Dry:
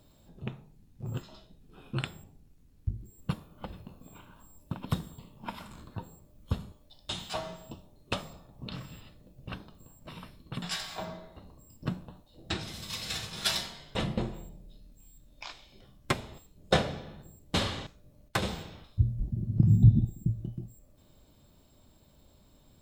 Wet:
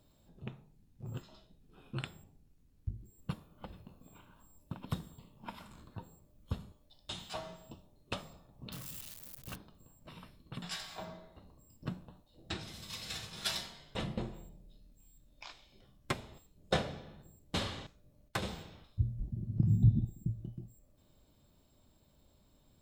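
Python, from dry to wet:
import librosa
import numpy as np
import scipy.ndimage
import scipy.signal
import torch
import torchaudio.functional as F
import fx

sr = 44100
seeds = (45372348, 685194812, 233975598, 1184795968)

y = fx.crossing_spikes(x, sr, level_db=-30.5, at=(8.72, 9.56))
y = y * librosa.db_to_amplitude(-6.5)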